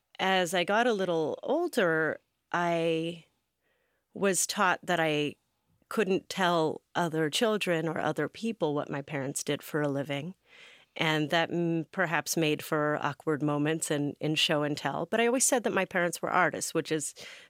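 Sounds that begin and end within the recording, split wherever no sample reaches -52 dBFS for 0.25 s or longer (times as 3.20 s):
2.52–3.24 s
4.15–5.33 s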